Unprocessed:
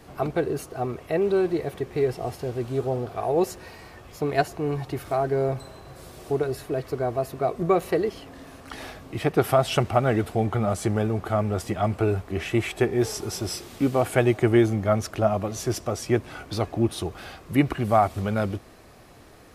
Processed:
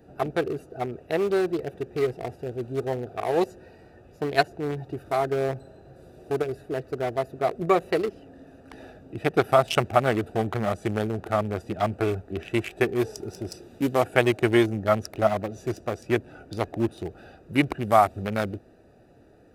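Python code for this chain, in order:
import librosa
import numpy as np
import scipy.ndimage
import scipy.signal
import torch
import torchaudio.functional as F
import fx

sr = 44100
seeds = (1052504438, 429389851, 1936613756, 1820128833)

y = fx.wiener(x, sr, points=41)
y = fx.tilt_eq(y, sr, slope=2.5)
y = F.gain(torch.from_numpy(y), 3.0).numpy()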